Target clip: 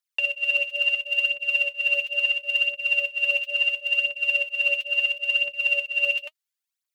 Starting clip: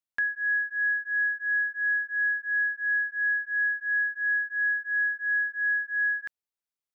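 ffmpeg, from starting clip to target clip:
-af "aeval=exprs='val(0)*sin(2*PI*1100*n/s)':c=same,highpass=1.5k,aphaser=in_gain=1:out_gain=1:delay=4:decay=0.63:speed=0.73:type=triangular,volume=7dB"

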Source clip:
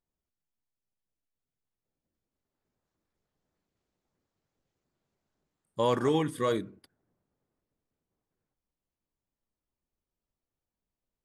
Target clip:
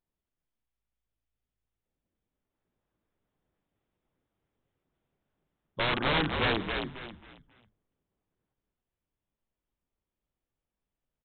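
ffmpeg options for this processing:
-filter_complex "[0:a]aresample=8000,aeval=exprs='(mod(12.6*val(0)+1,2)-1)/12.6':c=same,aresample=44100,asplit=5[a][b][c][d][e];[b]adelay=270,afreqshift=-55,volume=-4.5dB[f];[c]adelay=540,afreqshift=-110,volume=-14.7dB[g];[d]adelay=810,afreqshift=-165,volume=-24.8dB[h];[e]adelay=1080,afreqshift=-220,volume=-35dB[i];[a][f][g][h][i]amix=inputs=5:normalize=0"

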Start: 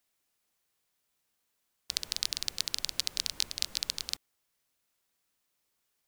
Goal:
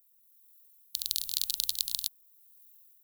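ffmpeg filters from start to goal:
-af "equalizer=f=250:t=o:w=1:g=-10,equalizer=f=500:t=o:w=1:g=-10,equalizer=f=1k:t=o:w=1:g=-9,equalizer=f=2k:t=o:w=1:g=-12,equalizer=f=4k:t=o:w=1:g=12,equalizer=f=8k:t=o:w=1:g=-10,dynaudnorm=f=350:g=5:m=9.5dB,aexciter=amount=5.7:drive=9.9:freq=7.3k,atempo=2,volume=-8dB"

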